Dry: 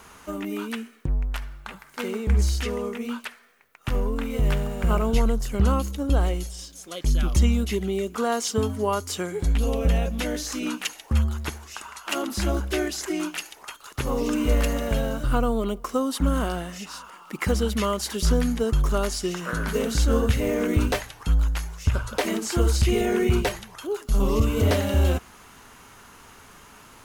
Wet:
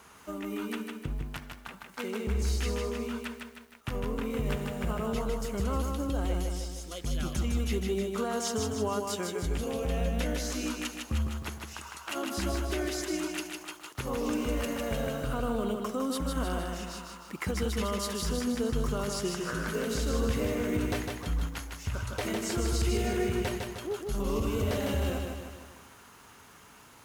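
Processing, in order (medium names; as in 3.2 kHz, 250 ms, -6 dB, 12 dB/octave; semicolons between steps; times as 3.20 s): high-pass 61 Hz; peak limiter -16.5 dBFS, peak gain reduction 7 dB; bit-crushed delay 155 ms, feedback 55%, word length 9-bit, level -4 dB; trim -6 dB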